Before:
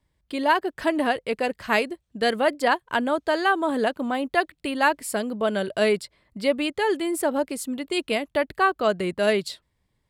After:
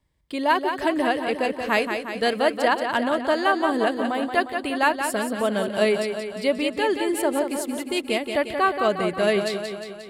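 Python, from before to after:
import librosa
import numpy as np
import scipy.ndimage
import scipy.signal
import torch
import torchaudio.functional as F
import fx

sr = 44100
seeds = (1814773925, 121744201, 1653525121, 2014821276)

y = fx.notch(x, sr, hz=1500.0, q=27.0)
y = fx.echo_feedback(y, sr, ms=178, feedback_pct=60, wet_db=-7.0)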